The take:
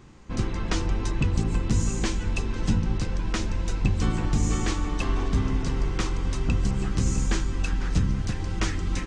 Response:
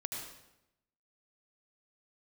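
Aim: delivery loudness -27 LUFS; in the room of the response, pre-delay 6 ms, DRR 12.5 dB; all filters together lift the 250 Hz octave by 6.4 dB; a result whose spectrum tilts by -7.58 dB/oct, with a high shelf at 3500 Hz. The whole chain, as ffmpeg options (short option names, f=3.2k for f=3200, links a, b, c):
-filter_complex "[0:a]equalizer=f=250:t=o:g=8.5,highshelf=f=3.5k:g=-5.5,asplit=2[a][b];[1:a]atrim=start_sample=2205,adelay=6[c];[b][c]afir=irnorm=-1:irlink=0,volume=-13dB[d];[a][d]amix=inputs=2:normalize=0,volume=-2dB"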